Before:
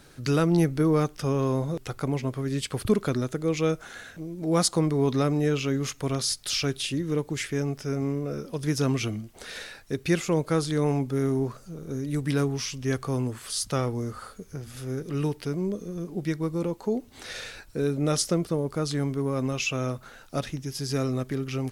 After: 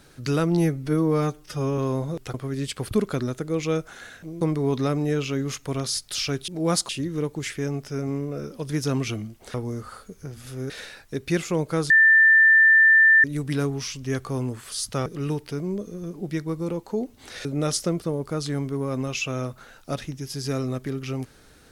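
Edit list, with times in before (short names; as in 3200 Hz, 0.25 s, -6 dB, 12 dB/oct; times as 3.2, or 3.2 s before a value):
0.58–1.38 stretch 1.5×
1.94–2.28 cut
4.35–4.76 move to 6.83
10.68–12.02 bleep 1780 Hz -11.5 dBFS
13.84–15 move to 9.48
17.39–17.9 cut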